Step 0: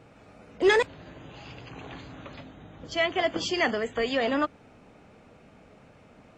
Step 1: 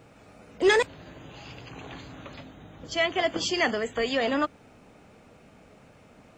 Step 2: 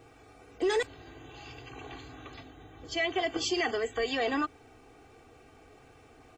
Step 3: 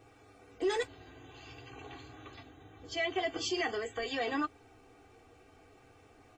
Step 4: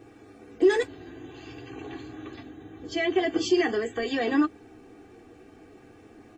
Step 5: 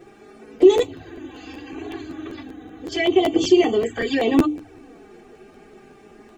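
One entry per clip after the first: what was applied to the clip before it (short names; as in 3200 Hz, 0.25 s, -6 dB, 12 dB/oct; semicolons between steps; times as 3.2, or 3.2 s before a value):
high shelf 7600 Hz +11 dB
comb 2.6 ms, depth 86%; limiter -15.5 dBFS, peak gain reduction 9.5 dB; reverse; upward compressor, threshold -46 dBFS; reverse; gain -5 dB
flange 0.47 Hz, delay 9.7 ms, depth 1 ms, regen -36%
small resonant body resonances 220/320/1700 Hz, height 12 dB, ringing for 35 ms; gain +3 dB
envelope flanger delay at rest 6 ms, full sweep at -23 dBFS; notches 60/120/180/240/300 Hz; crackling interface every 0.19 s, samples 512, repeat, from 0.58; gain +8.5 dB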